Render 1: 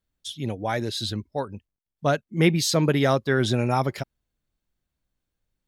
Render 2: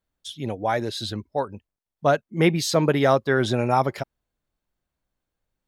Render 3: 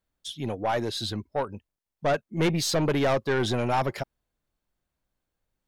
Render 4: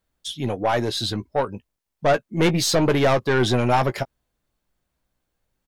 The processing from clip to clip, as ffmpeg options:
-af "equalizer=f=790:w=0.54:g=7,volume=-2.5dB"
-af "aeval=exprs='(tanh(8.91*val(0)+0.15)-tanh(0.15))/8.91':c=same"
-filter_complex "[0:a]asplit=2[a][b];[b]adelay=16,volume=-11.5dB[c];[a][c]amix=inputs=2:normalize=0,volume=5.5dB"

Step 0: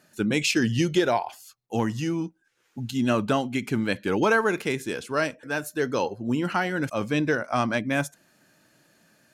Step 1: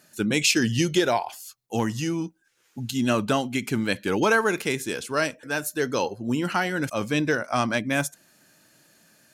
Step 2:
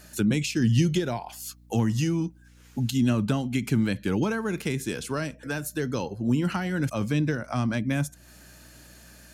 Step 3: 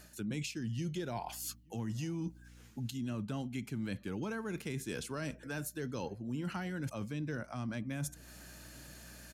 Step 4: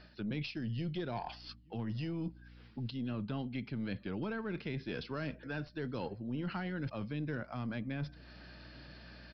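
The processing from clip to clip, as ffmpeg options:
-af "highshelf=f=3.8k:g=8"
-filter_complex "[0:a]acrossover=split=220[a][b];[b]acompressor=threshold=-37dB:ratio=6[c];[a][c]amix=inputs=2:normalize=0,aeval=exprs='val(0)+0.00112*(sin(2*PI*60*n/s)+sin(2*PI*2*60*n/s)/2+sin(2*PI*3*60*n/s)/3+sin(2*PI*4*60*n/s)/4+sin(2*PI*5*60*n/s)/5)':c=same,volume=6.5dB"
-filter_complex "[0:a]areverse,acompressor=threshold=-34dB:ratio=6,areverse,asplit=2[a][b];[b]adelay=874.6,volume=-28dB,highshelf=f=4k:g=-19.7[c];[a][c]amix=inputs=2:normalize=0,volume=-2dB"
-af "aeval=exprs='(tanh(25.1*val(0)+0.3)-tanh(0.3))/25.1':c=same,aresample=11025,aresample=44100,volume=1.5dB"

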